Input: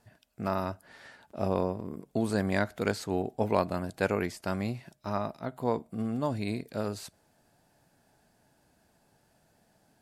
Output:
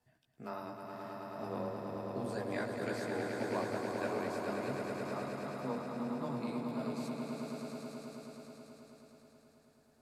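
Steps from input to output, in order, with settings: chorus voices 4, 0.53 Hz, delay 15 ms, depth 2.5 ms; swelling echo 0.107 s, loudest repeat 5, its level -6 dB; frequency shift +15 Hz; gain -8.5 dB

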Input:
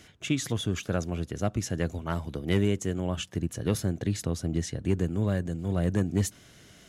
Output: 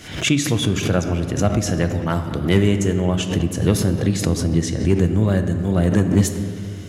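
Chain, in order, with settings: on a send at -7 dB: reverb RT60 2.4 s, pre-delay 6 ms; on the sum: backwards sustainer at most 92 dB/s; gain +8.5 dB

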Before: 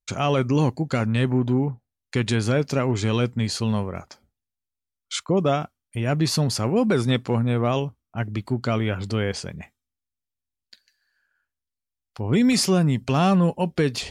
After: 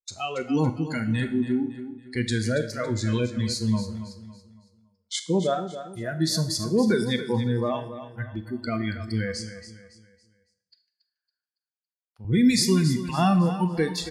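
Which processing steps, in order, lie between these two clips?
spectral noise reduction 22 dB; 9.46–12.25 BPF 140–7800 Hz; feedback echo 0.279 s, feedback 37%, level -12 dB; Schroeder reverb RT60 0.58 s, combs from 25 ms, DRR 10 dB; gain -1 dB

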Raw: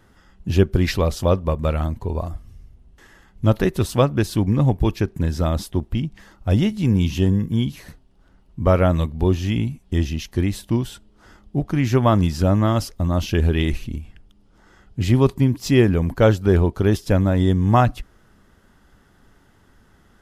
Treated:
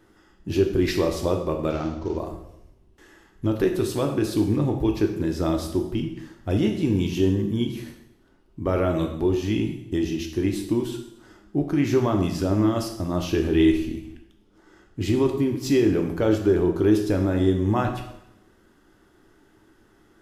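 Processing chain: 1.7–2.17 CVSD 32 kbps; bell 340 Hz +13 dB 0.46 oct; limiter -6.5 dBFS, peak gain reduction 9 dB; low shelf 190 Hz -6 dB; reverb RT60 0.80 s, pre-delay 3 ms, DRR 3 dB; gain -4.5 dB

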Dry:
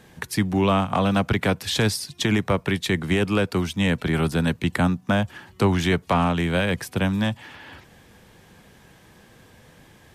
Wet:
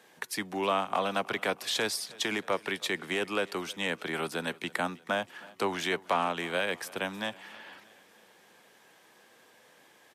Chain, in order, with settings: HPF 420 Hz 12 dB/oct; on a send: feedback echo 0.317 s, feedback 56%, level -22.5 dB; on the sum: gain -5 dB

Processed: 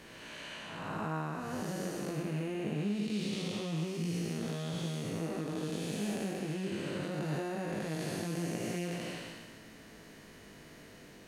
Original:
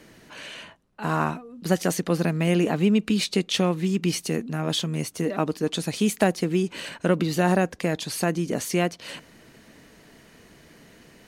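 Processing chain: time blur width 0.478 s; compressor 3:1, threshold -35 dBFS, peak gain reduction 11 dB; chorus 0.22 Hz, delay 17.5 ms, depth 2.9 ms; gain +3 dB

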